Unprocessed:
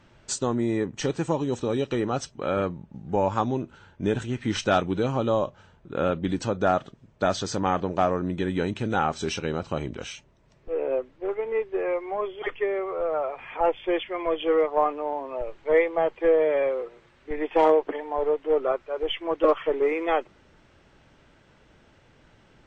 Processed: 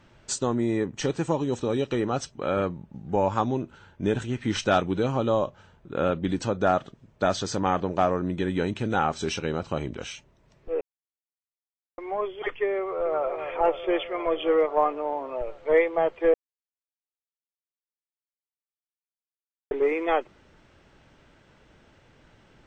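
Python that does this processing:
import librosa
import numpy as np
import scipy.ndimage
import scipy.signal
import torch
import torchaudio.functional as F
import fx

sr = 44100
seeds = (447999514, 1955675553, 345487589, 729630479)

y = fx.echo_throw(x, sr, start_s=12.79, length_s=0.45, ms=260, feedback_pct=80, wet_db=-8.0)
y = fx.edit(y, sr, fx.silence(start_s=10.81, length_s=1.17),
    fx.silence(start_s=16.34, length_s=3.37), tone=tone)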